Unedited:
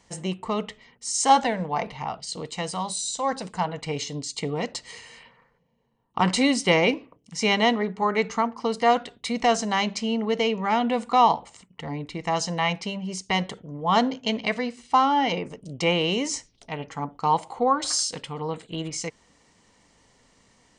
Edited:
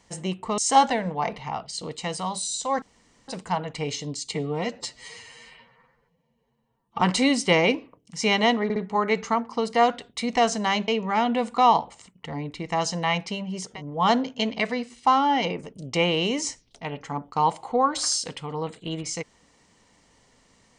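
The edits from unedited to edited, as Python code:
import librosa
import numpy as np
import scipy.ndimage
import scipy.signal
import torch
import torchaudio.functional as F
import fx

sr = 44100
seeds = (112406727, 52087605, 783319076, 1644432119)

y = fx.edit(x, sr, fx.cut(start_s=0.58, length_s=0.54),
    fx.insert_room_tone(at_s=3.36, length_s=0.46),
    fx.stretch_span(start_s=4.42, length_s=1.78, factor=1.5),
    fx.stutter(start_s=7.83, slice_s=0.06, count=3),
    fx.cut(start_s=9.95, length_s=0.48),
    fx.cut(start_s=13.25, length_s=0.32, crossfade_s=0.24), tone=tone)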